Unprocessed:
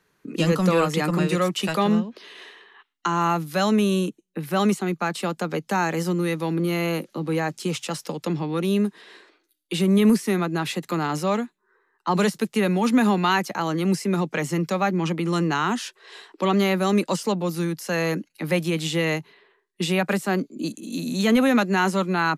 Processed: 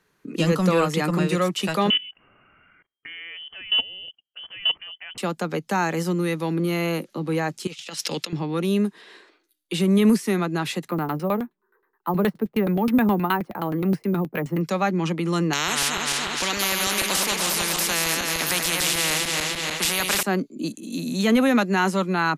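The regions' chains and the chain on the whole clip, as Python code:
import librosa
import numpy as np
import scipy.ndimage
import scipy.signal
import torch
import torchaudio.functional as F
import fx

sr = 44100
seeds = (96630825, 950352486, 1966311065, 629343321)

y = fx.chain(x, sr, fx.level_steps(step_db=19),
    fx.freq_invert(carrier_hz=3200), at=(1.9, 5.18))
y = fx.chain(y, sr, fx.weighting(curve='D'),
    fx.over_compress(threshold_db=-31.0, ratio=-0.5), at=(7.67, 8.33))
y = fx.chain(y, sr, fx.filter_lfo_lowpass(shape='saw_down', hz=9.5, low_hz=320.0, high_hz=4600.0, q=0.73),
    fx.resample_bad(factor=3, down='none', up='hold'), at=(10.88, 14.61))
y = fx.chain(y, sr, fx.reverse_delay_fb(ms=149, feedback_pct=66, wet_db=-6.5),
    fx.peak_eq(hz=2500.0, db=9.5, octaves=1.4),
    fx.spectral_comp(ratio=4.0), at=(15.53, 20.23))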